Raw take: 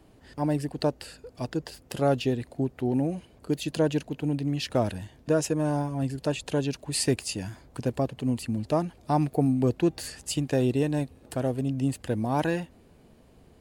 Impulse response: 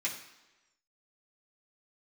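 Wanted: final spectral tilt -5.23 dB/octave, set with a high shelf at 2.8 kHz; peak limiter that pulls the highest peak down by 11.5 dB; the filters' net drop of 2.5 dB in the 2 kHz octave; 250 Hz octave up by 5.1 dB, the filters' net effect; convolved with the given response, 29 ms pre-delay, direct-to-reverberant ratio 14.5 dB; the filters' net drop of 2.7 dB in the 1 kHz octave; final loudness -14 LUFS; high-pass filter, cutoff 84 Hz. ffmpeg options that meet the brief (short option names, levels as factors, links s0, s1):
-filter_complex "[0:a]highpass=84,equalizer=f=250:t=o:g=6.5,equalizer=f=1000:t=o:g=-4.5,equalizer=f=2000:t=o:g=-6.5,highshelf=f=2800:g=8.5,alimiter=limit=0.112:level=0:latency=1,asplit=2[s0][s1];[1:a]atrim=start_sample=2205,adelay=29[s2];[s1][s2]afir=irnorm=-1:irlink=0,volume=0.112[s3];[s0][s3]amix=inputs=2:normalize=0,volume=6.31"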